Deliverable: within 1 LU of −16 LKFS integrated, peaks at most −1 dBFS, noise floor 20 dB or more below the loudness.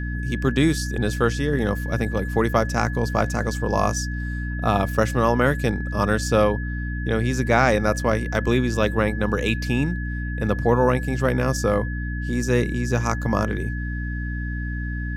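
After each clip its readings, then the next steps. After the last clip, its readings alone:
mains hum 60 Hz; hum harmonics up to 300 Hz; level of the hum −25 dBFS; interfering tone 1,700 Hz; level of the tone −34 dBFS; integrated loudness −23.0 LKFS; sample peak −3.0 dBFS; target loudness −16.0 LKFS
→ mains-hum notches 60/120/180/240/300 Hz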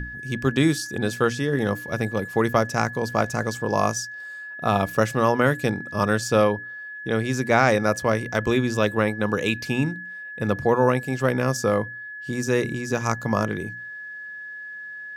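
mains hum none found; interfering tone 1,700 Hz; level of the tone −34 dBFS
→ notch filter 1,700 Hz, Q 30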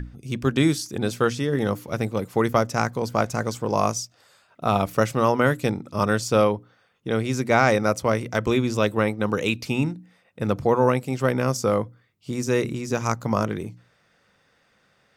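interfering tone none found; integrated loudness −23.5 LKFS; sample peak −4.0 dBFS; target loudness −16.0 LKFS
→ level +7.5 dB
brickwall limiter −1 dBFS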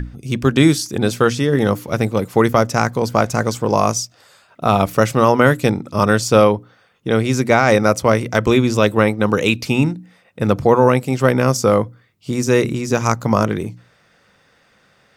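integrated loudness −16.5 LKFS; sample peak −1.0 dBFS; background noise floor −57 dBFS

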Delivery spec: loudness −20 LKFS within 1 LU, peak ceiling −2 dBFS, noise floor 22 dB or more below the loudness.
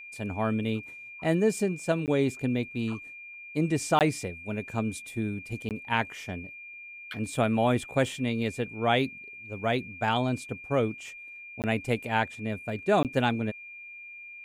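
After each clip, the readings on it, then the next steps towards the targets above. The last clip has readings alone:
number of dropouts 5; longest dropout 18 ms; interfering tone 2,400 Hz; level of the tone −42 dBFS; integrated loudness −29.0 LKFS; sample peak −11.0 dBFS; target loudness −20.0 LKFS
→ repair the gap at 0:02.06/0:03.99/0:05.69/0:11.62/0:13.03, 18 ms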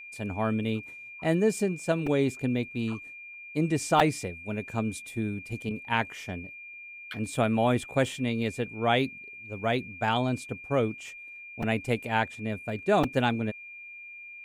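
number of dropouts 0; interfering tone 2,400 Hz; level of the tone −42 dBFS
→ notch filter 2,400 Hz, Q 30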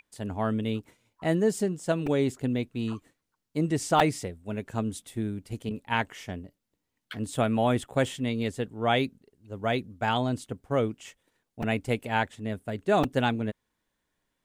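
interfering tone none found; integrated loudness −29.0 LKFS; sample peak −6.5 dBFS; target loudness −20.0 LKFS
→ level +9 dB
brickwall limiter −2 dBFS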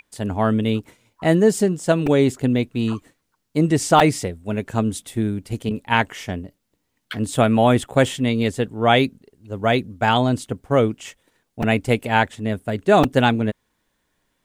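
integrated loudness −20.0 LKFS; sample peak −2.0 dBFS; background noise floor −73 dBFS

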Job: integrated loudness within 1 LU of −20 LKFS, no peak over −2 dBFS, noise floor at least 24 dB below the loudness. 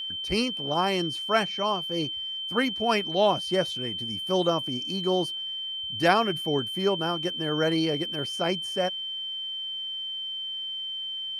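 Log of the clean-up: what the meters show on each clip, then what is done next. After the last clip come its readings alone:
interfering tone 3,100 Hz; level of the tone −31 dBFS; integrated loudness −27.0 LKFS; sample peak −7.5 dBFS; target loudness −20.0 LKFS
→ notch filter 3,100 Hz, Q 30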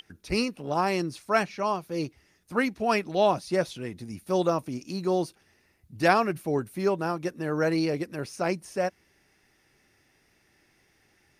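interfering tone none found; integrated loudness −28.0 LKFS; sample peak −7.5 dBFS; target loudness −20.0 LKFS
→ level +8 dB
brickwall limiter −2 dBFS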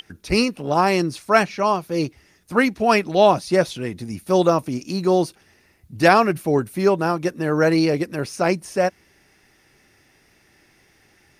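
integrated loudness −20.0 LKFS; sample peak −2.0 dBFS; background noise floor −58 dBFS

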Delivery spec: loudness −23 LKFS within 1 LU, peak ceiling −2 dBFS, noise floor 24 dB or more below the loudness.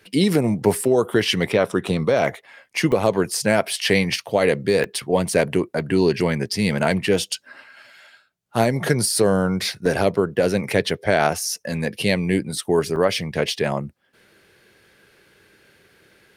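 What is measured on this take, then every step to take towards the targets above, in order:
number of dropouts 5; longest dropout 2.5 ms; integrated loudness −21.0 LKFS; sample peak −4.0 dBFS; target loudness −23.0 LKFS
→ repair the gap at 0:02.92/0:04.84/0:09.86/0:10.90/0:12.96, 2.5 ms
level −2 dB

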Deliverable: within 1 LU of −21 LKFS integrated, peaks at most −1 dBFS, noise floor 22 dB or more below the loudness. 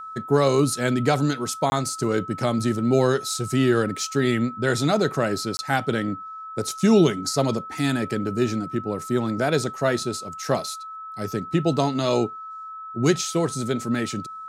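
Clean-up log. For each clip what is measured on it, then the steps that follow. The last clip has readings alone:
number of dropouts 2; longest dropout 20 ms; interfering tone 1,300 Hz; level of the tone −34 dBFS; integrated loudness −23.5 LKFS; sample peak −6.0 dBFS; target loudness −21.0 LKFS
→ repair the gap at 0:01.70/0:05.57, 20 ms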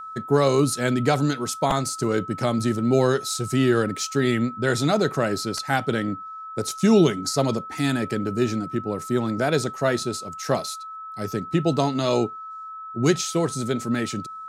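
number of dropouts 0; interfering tone 1,300 Hz; level of the tone −34 dBFS
→ notch filter 1,300 Hz, Q 30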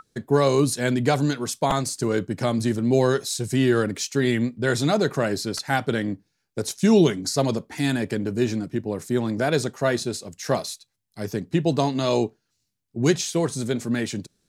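interfering tone none found; integrated loudness −23.5 LKFS; sample peak −6.0 dBFS; target loudness −21.0 LKFS
→ level +2.5 dB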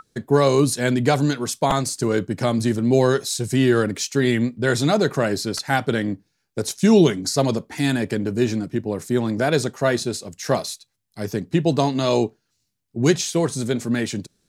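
integrated loudness −21.0 LKFS; sample peak −3.5 dBFS; background noise floor −73 dBFS

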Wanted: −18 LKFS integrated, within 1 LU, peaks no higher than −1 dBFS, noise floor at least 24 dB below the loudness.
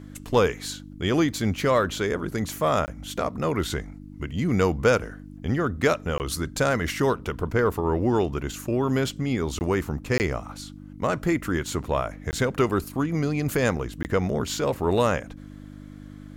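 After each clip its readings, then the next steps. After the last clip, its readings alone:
number of dropouts 6; longest dropout 19 ms; mains hum 50 Hz; hum harmonics up to 300 Hz; level of the hum −39 dBFS; integrated loudness −25.5 LKFS; sample peak −6.5 dBFS; target loudness −18.0 LKFS
→ repair the gap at 0:02.86/0:06.18/0:09.59/0:10.18/0:12.31/0:14.03, 19 ms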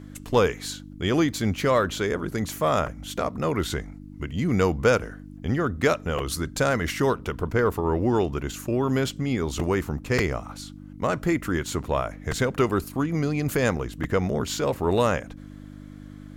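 number of dropouts 0; mains hum 50 Hz; hum harmonics up to 300 Hz; level of the hum −39 dBFS
→ hum removal 50 Hz, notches 6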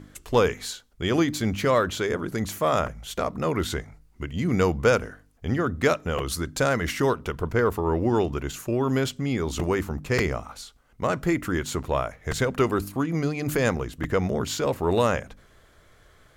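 mains hum none found; integrated loudness −25.5 LKFS; sample peak −6.5 dBFS; target loudness −18.0 LKFS
→ level +7.5 dB
brickwall limiter −1 dBFS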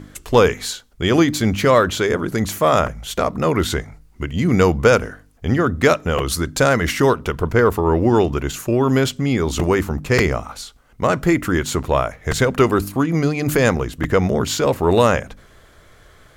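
integrated loudness −18.5 LKFS; sample peak −1.0 dBFS; background noise floor −50 dBFS

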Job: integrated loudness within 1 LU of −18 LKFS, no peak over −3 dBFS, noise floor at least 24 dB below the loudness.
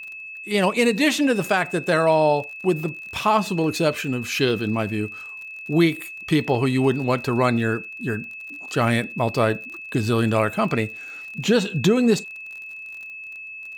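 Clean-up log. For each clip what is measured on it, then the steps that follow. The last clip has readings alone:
crackle rate 41 per second; interfering tone 2,600 Hz; level of the tone −34 dBFS; integrated loudness −22.0 LKFS; sample peak −7.0 dBFS; target loudness −18.0 LKFS
→ click removal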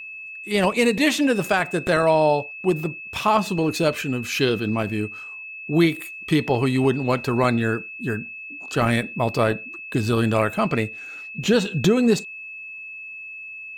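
crackle rate 0.15 per second; interfering tone 2,600 Hz; level of the tone −34 dBFS
→ notch filter 2,600 Hz, Q 30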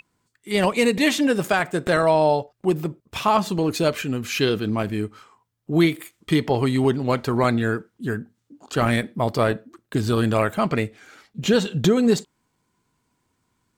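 interfering tone none found; integrated loudness −22.0 LKFS; sample peak −7.5 dBFS; target loudness −18.0 LKFS
→ level +4 dB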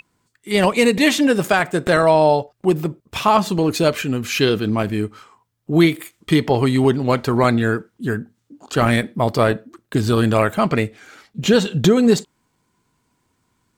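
integrated loudness −18.0 LKFS; sample peak −3.5 dBFS; background noise floor −69 dBFS

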